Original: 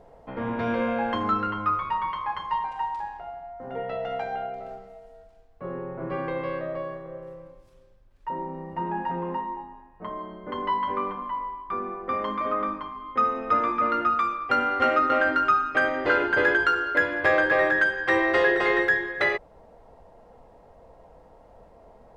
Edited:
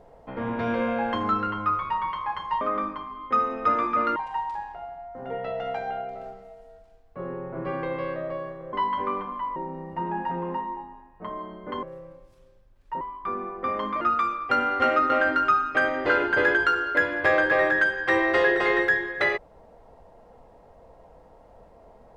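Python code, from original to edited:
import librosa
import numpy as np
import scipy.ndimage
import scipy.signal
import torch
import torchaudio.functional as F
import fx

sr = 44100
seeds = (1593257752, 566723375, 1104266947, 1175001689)

y = fx.edit(x, sr, fx.swap(start_s=7.18, length_s=1.18, other_s=10.63, other_length_s=0.83),
    fx.move(start_s=12.46, length_s=1.55, to_s=2.61), tone=tone)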